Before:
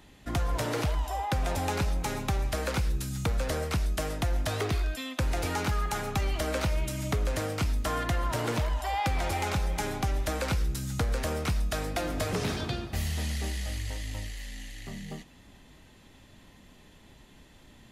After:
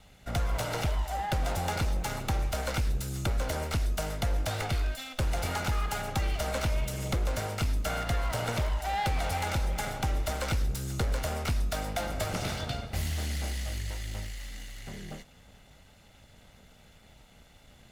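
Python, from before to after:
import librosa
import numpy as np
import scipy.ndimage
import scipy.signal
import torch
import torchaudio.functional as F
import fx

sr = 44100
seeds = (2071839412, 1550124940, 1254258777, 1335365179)

y = fx.lower_of_two(x, sr, delay_ms=1.4)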